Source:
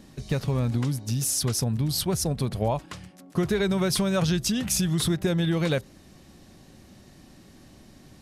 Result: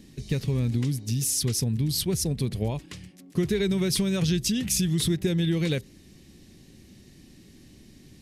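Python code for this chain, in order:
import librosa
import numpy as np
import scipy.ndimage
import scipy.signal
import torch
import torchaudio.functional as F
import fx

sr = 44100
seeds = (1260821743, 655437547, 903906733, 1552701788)

y = fx.band_shelf(x, sr, hz=920.0, db=-11.0, octaves=1.7)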